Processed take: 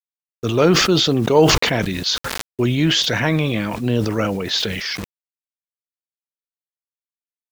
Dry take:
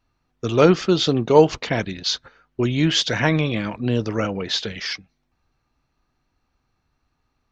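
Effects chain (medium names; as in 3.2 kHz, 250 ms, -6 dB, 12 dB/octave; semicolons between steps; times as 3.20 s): in parallel at -0.5 dB: peak limiter -11 dBFS, peak gain reduction 9.5 dB; on the sum: bit crusher 7-bit; decay stretcher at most 33 dB/s; trim -4 dB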